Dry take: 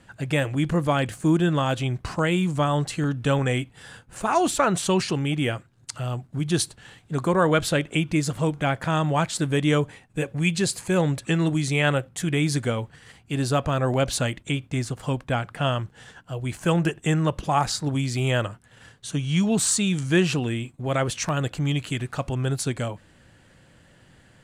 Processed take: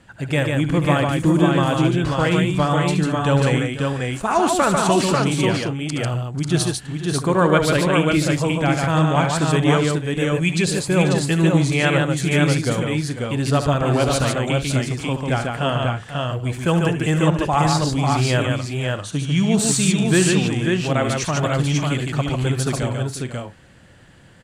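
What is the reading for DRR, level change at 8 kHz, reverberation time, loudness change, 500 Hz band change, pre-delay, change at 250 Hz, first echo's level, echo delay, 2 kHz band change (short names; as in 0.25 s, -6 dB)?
none, +4.0 dB, none, +5.0 dB, +5.5 dB, none, +5.5 dB, -10.5 dB, 72 ms, +5.5 dB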